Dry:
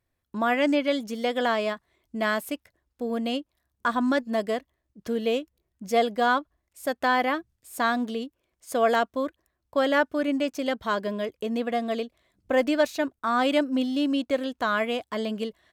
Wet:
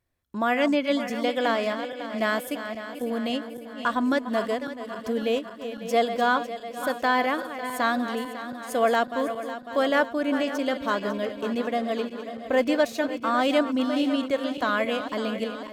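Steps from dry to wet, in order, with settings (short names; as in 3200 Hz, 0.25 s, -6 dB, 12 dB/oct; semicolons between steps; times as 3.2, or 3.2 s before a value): regenerating reverse delay 0.275 s, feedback 74%, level -10.5 dB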